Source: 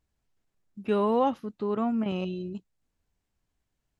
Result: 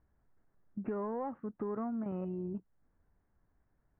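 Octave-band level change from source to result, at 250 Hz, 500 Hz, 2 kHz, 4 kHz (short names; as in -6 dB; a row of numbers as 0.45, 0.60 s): -8.5 dB, -11.0 dB, -13.5 dB, under -35 dB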